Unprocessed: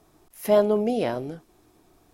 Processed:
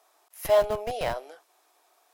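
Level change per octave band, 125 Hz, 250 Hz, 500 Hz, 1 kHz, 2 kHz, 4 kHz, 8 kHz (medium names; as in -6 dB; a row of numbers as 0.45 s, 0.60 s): -7.0 dB, -18.5 dB, -3.0 dB, +0.5 dB, +1.5 dB, +1.5 dB, no reading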